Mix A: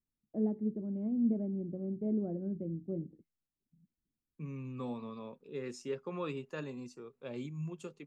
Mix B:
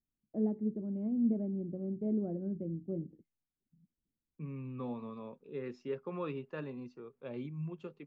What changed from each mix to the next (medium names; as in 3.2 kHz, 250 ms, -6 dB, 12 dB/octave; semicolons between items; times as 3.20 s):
second voice: add Gaussian low-pass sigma 2.4 samples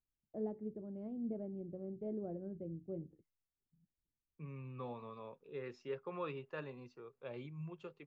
master: add peaking EQ 230 Hz -11.5 dB 1.2 oct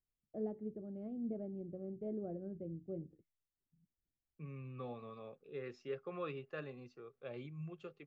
master: add Butterworth band-stop 950 Hz, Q 4.6